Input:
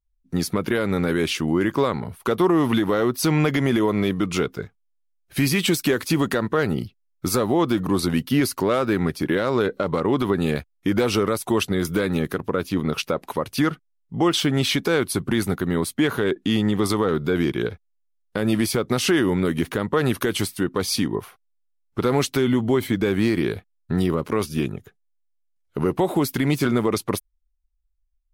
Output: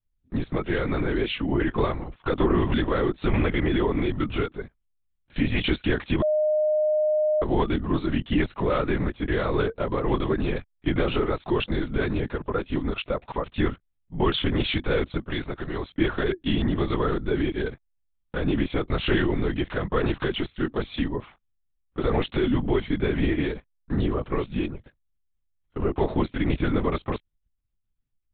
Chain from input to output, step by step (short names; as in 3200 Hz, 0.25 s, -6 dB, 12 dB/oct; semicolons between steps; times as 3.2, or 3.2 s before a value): 15.2–15.89 low shelf 310 Hz -9 dB; LPC vocoder at 8 kHz whisper; 6.22–7.42 bleep 612 Hz -16 dBFS; gain -3 dB